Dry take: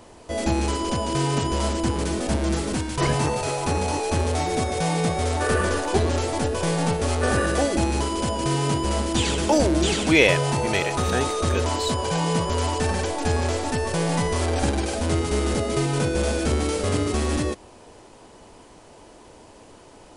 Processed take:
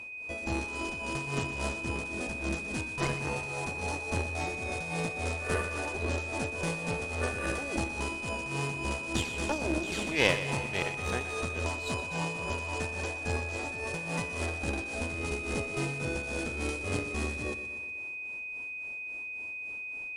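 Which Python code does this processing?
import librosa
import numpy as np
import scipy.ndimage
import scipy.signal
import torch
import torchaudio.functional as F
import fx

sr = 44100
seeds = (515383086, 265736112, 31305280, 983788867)

y = fx.cheby_harmonics(x, sr, harmonics=(3, 4), levels_db=(-21, -13), full_scale_db=-1.0)
y = y * (1.0 - 0.75 / 2.0 + 0.75 / 2.0 * np.cos(2.0 * np.pi * 3.6 * (np.arange(len(y)) / sr)))
y = y + 10.0 ** (-34.0 / 20.0) * np.sin(2.0 * np.pi * 2500.0 * np.arange(len(y)) / sr)
y = fx.echo_feedback(y, sr, ms=122, feedback_pct=59, wet_db=-12)
y = y * 10.0 ** (-6.5 / 20.0)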